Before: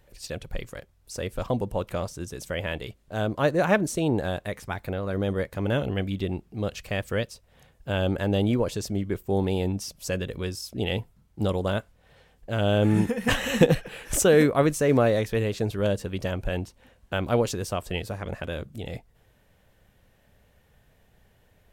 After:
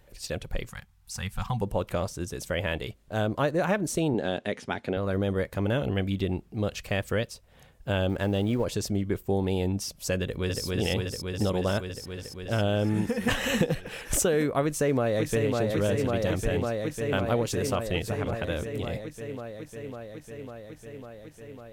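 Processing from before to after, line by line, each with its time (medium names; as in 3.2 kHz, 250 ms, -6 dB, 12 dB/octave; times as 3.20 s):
0.70–1.62 s: time-frequency box 230–720 Hz -19 dB
4.14–4.97 s: cabinet simulation 160–8700 Hz, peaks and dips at 240 Hz +8 dB, 400 Hz +5 dB, 1.1 kHz -5 dB, 3.1 kHz +5 dB, 8 kHz -7 dB
8.09–8.65 s: companding laws mixed up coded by A
10.21–10.65 s: echo throw 280 ms, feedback 85%, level -2 dB
14.64–15.55 s: echo throw 550 ms, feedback 80%, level -6 dB
whole clip: compression 6:1, threshold -23 dBFS; trim +1.5 dB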